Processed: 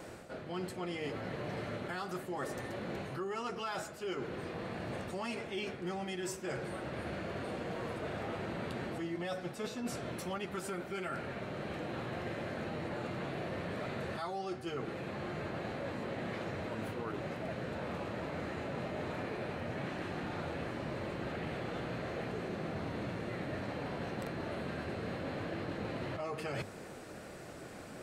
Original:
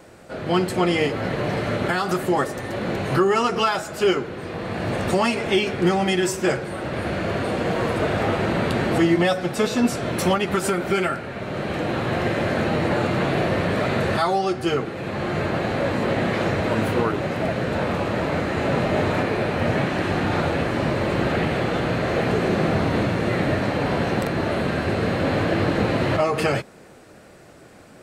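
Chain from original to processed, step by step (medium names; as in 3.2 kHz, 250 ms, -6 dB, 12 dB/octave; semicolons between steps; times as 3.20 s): hum notches 50/100 Hz; reverse; compression 6:1, threshold -37 dBFS, peak gain reduction 20.5 dB; reverse; trim -1 dB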